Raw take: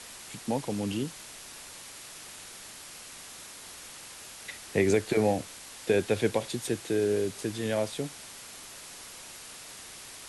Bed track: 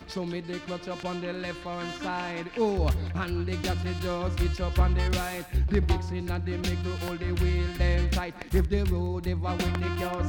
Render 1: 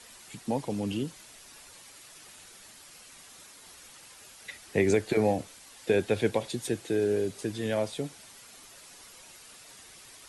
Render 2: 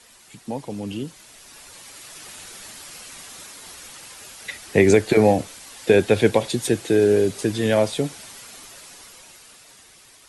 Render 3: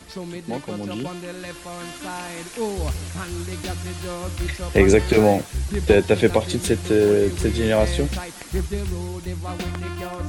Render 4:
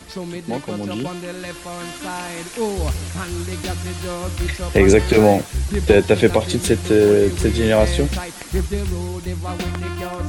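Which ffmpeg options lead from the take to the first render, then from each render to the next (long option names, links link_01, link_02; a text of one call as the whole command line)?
ffmpeg -i in.wav -af "afftdn=noise_reduction=8:noise_floor=-46" out.wav
ffmpeg -i in.wav -af "dynaudnorm=framelen=290:gausssize=13:maxgain=13dB" out.wav
ffmpeg -i in.wav -i bed.wav -filter_complex "[1:a]volume=-0.5dB[link_01];[0:a][link_01]amix=inputs=2:normalize=0" out.wav
ffmpeg -i in.wav -af "volume=3.5dB,alimiter=limit=-1dB:level=0:latency=1" out.wav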